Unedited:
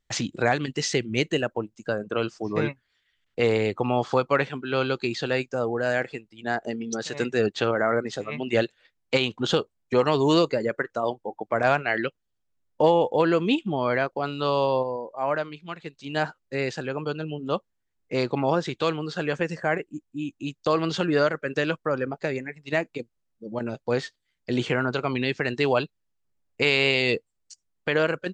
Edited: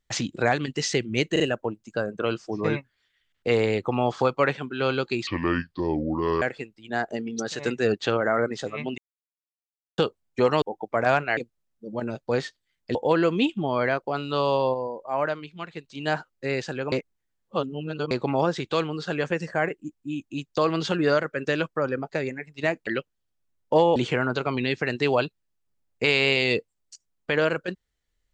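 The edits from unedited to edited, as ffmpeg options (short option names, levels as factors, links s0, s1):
-filter_complex "[0:a]asplit=14[s0][s1][s2][s3][s4][s5][s6][s7][s8][s9][s10][s11][s12][s13];[s0]atrim=end=1.362[s14];[s1]atrim=start=1.318:end=1.362[s15];[s2]atrim=start=1.318:end=5.194[s16];[s3]atrim=start=5.19:end=5.96,asetpts=PTS-STARTPTS,asetrate=29547,aresample=44100,atrim=end_sample=50682,asetpts=PTS-STARTPTS[s17];[s4]atrim=start=5.956:end=8.52,asetpts=PTS-STARTPTS,afade=t=out:st=2.56:d=0.004:c=hsin[s18];[s5]atrim=start=8.52:end=9.52,asetpts=PTS-STARTPTS,volume=0[s19];[s6]atrim=start=9.52:end=10.162,asetpts=PTS-STARTPTS,afade=t=in:d=0.004:c=hsin[s20];[s7]atrim=start=11.198:end=11.952[s21];[s8]atrim=start=22.958:end=24.542[s22];[s9]atrim=start=13.038:end=17.012[s23];[s10]atrim=start=17.008:end=18.202,asetpts=PTS-STARTPTS,areverse[s24];[s11]atrim=start=18.198:end=22.962[s25];[s12]atrim=start=11.948:end=13.042[s26];[s13]atrim=start=24.538[s27];[s14][s15]acrossfade=d=0.004:c1=hsin:c2=hsin[s28];[s28][s16]acrossfade=d=0.004:c1=hsin:c2=hsin[s29];[s29][s17]acrossfade=d=0.004:c1=hsin:c2=hsin[s30];[s18][s19][s20]concat=n=3:v=0:a=1[s31];[s30][s31]acrossfade=d=0.004:c1=hsin:c2=hsin[s32];[s32][s21]acrossfade=d=0.004:c1=hsin:c2=hsin[s33];[s33][s22]acrossfade=d=0.004:c1=hsin:c2=hsin[s34];[s34][s23]acrossfade=d=0.004:c1=hsin:c2=hsin[s35];[s35][s24]acrossfade=d=0.004:c1=hsin:c2=hsin[s36];[s36][s25]acrossfade=d=0.004:c1=hsin:c2=hsin[s37];[s37][s26]acrossfade=d=0.004:c1=hsin:c2=hsin[s38];[s38][s27]acrossfade=d=0.004:c1=hsin:c2=hsin"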